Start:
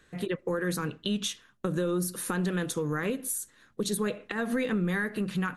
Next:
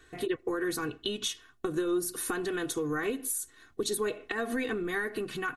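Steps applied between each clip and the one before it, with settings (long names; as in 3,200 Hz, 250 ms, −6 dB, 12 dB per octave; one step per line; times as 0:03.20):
comb filter 2.7 ms, depth 84%
in parallel at −2 dB: downward compressor, threshold −37 dBFS, peak gain reduction 13.5 dB
on the sum: level −4.5 dB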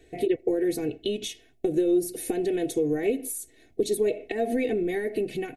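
drawn EQ curve 150 Hz 0 dB, 680 Hz +6 dB, 1,200 Hz −29 dB, 2,200 Hz +1 dB, 3,100 Hz −6 dB, 6,900 Hz −6 dB, 12,000 Hz −4 dB
level +3.5 dB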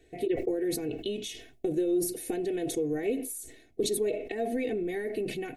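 level that may fall only so fast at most 75 dB per second
level −5 dB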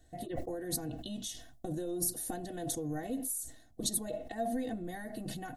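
phaser with its sweep stopped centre 990 Hz, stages 4
level +2.5 dB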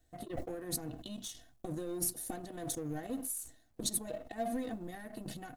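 mu-law and A-law mismatch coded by A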